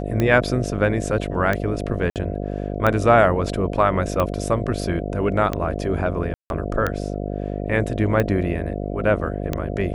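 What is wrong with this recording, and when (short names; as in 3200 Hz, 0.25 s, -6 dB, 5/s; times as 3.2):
buzz 50 Hz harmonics 14 -27 dBFS
tick 45 rpm -9 dBFS
2.1–2.16 gap 58 ms
6.34–6.5 gap 0.161 s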